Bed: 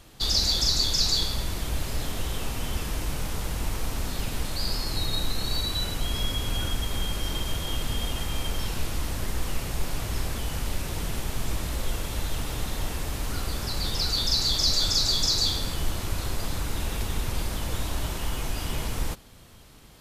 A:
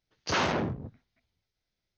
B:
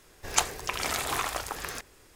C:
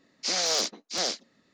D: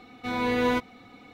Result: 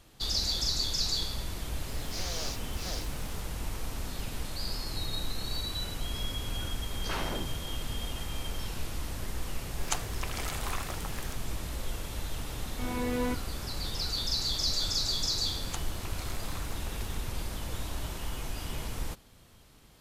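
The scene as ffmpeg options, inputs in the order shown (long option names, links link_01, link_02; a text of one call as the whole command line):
ffmpeg -i bed.wav -i cue0.wav -i cue1.wav -i cue2.wav -i cue3.wav -filter_complex "[2:a]asplit=2[link_01][link_02];[0:a]volume=-6.5dB[link_03];[3:a]aeval=exprs='val(0)+0.5*0.02*sgn(val(0))':channel_layout=same[link_04];[1:a]asoftclip=type=hard:threshold=-22dB[link_05];[4:a]lowshelf=frequency=400:gain=8.5[link_06];[link_04]atrim=end=1.53,asetpts=PTS-STARTPTS,volume=-13dB,afade=type=in:duration=0.004:curve=hsin,afade=type=out:start_time=1.526:duration=0.004:curve=hsin,adelay=1880[link_07];[link_05]atrim=end=1.97,asetpts=PTS-STARTPTS,volume=-8.5dB,afade=type=in:duration=0.004:curve=hsin,afade=type=out:start_time=1.966:duration=0.004:curve=hsin,adelay=6770[link_08];[link_01]atrim=end=2.15,asetpts=PTS-STARTPTS,volume=-8dB,afade=type=in:duration=0.004:curve=hsin,afade=type=out:start_time=2.146:duration=0.004:curve=hsin,adelay=420714S[link_09];[link_06]atrim=end=1.33,asetpts=PTS-STARTPTS,volume=-11dB,afade=type=in:duration=0.004:curve=hsin,afade=type=out:start_time=1.326:duration=0.004:curve=hsin,adelay=12550[link_10];[link_02]atrim=end=2.15,asetpts=PTS-STARTPTS,volume=-16.5dB,afade=type=in:duration=0.004:curve=hsin,afade=type=out:start_time=2.146:duration=0.004:curve=hsin,adelay=15360[link_11];[link_03][link_07][link_08][link_09][link_10][link_11]amix=inputs=6:normalize=0" out.wav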